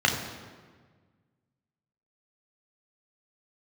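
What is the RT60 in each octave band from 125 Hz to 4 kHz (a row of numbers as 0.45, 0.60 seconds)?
2.1, 1.9, 1.6, 1.5, 1.3, 1.1 seconds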